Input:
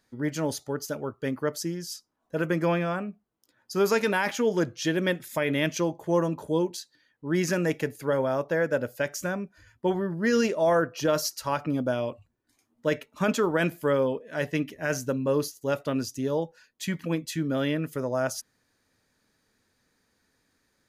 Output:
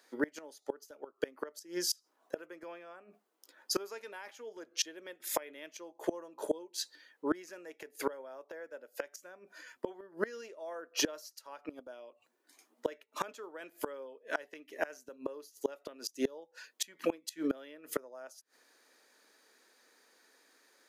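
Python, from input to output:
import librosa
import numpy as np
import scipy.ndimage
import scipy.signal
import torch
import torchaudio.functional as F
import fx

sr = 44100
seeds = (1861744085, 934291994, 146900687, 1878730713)

y = scipy.signal.sosfilt(scipy.signal.butter(4, 340.0, 'highpass', fs=sr, output='sos'), x)
y = fx.gate_flip(y, sr, shuts_db=-25.0, range_db=-27)
y = F.gain(torch.from_numpy(y), 6.5).numpy()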